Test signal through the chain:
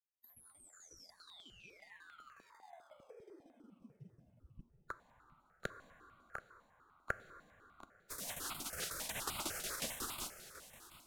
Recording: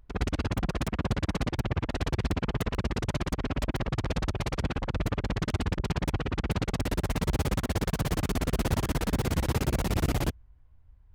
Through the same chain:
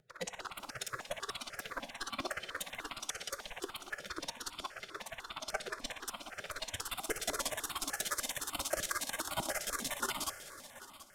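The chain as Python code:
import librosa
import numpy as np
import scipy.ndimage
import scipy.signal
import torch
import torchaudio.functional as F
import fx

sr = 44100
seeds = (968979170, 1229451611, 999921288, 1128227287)

p1 = fx.spec_gate(x, sr, threshold_db=-20, keep='weak')
p2 = fx.sample_hold(p1, sr, seeds[0], rate_hz=2800.0, jitter_pct=0)
p3 = p1 + (p2 * 10.0 ** (-8.5 / 20.0))
p4 = fx.noise_reduce_blind(p3, sr, reduce_db=9)
p5 = fx.peak_eq(p4, sr, hz=1400.0, db=7.0, octaves=0.66)
p6 = fx.env_lowpass_down(p5, sr, base_hz=1900.0, full_db=-18.0)
p7 = fx.tremolo_shape(p6, sr, shape='saw_down', hz=5.5, depth_pct=80)
p8 = fx.rotary(p7, sr, hz=5.5)
p9 = p8 + fx.echo_feedback(p8, sr, ms=730, feedback_pct=34, wet_db=-16.0, dry=0)
p10 = fx.rev_plate(p9, sr, seeds[1], rt60_s=3.5, hf_ratio=0.8, predelay_ms=0, drr_db=11.0)
p11 = fx.phaser_held(p10, sr, hz=10.0, low_hz=280.0, high_hz=1700.0)
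y = p11 * 10.0 ** (13.5 / 20.0)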